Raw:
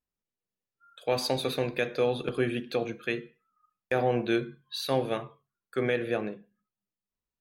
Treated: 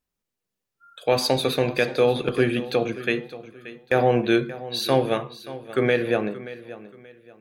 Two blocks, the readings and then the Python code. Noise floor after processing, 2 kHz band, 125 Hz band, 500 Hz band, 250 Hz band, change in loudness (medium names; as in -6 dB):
-84 dBFS, +7.0 dB, +7.0 dB, +7.0 dB, +7.0 dB, +7.0 dB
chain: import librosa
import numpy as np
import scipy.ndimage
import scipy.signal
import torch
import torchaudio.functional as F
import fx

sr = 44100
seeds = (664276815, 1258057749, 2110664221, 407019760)

y = fx.echo_feedback(x, sr, ms=579, feedback_pct=30, wet_db=-16.0)
y = y * 10.0 ** (7.0 / 20.0)